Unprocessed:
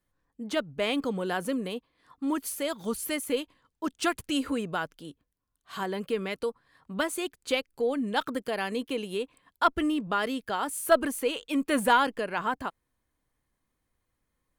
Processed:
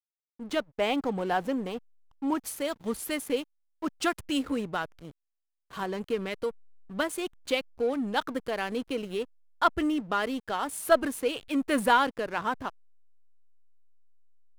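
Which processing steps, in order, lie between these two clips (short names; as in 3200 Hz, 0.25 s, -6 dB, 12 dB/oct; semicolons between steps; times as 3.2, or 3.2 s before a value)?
0.61–2.47 thirty-one-band EQ 800 Hz +11 dB, 4000 Hz -5 dB, 10000 Hz -8 dB; backlash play -36 dBFS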